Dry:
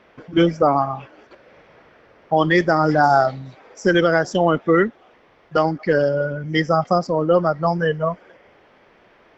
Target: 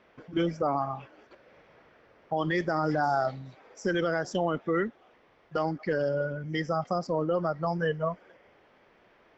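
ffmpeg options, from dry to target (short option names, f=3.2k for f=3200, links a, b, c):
-af "alimiter=limit=-10.5dB:level=0:latency=1:release=63,volume=-8dB"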